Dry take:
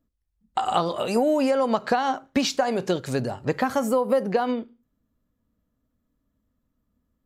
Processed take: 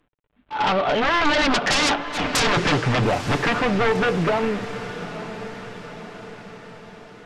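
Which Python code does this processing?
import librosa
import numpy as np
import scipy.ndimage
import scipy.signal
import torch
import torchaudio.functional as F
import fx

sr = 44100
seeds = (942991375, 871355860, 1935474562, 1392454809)

y = fx.cvsd(x, sr, bps=16000)
y = fx.doppler_pass(y, sr, speed_mps=41, closest_m=22.0, pass_at_s=2.25)
y = fx.low_shelf(y, sr, hz=500.0, db=-3.0)
y = fx.fold_sine(y, sr, drive_db=19, ceiling_db=-14.0)
y = fx.auto_swell(y, sr, attack_ms=124.0)
y = y + 0.31 * np.pad(y, (int(6.8 * sr / 1000.0), 0))[:len(y)]
y = fx.echo_diffused(y, sr, ms=920, feedback_pct=55, wet_db=-12.0)
y = y * librosa.db_to_amplitude(-2.5)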